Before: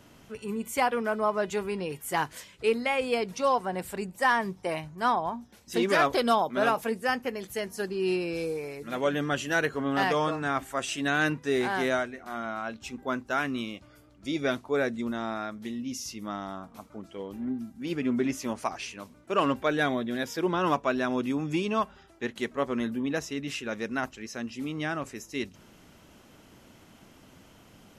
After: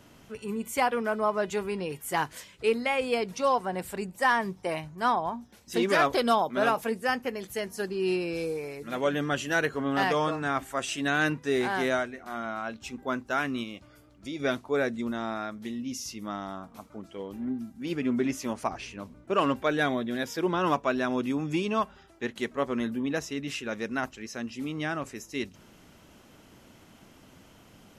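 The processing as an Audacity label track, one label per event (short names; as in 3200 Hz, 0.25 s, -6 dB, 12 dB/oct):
13.630000	14.400000	compressor 2:1, threshold -36 dBFS
18.630000	19.340000	tilt -2 dB/oct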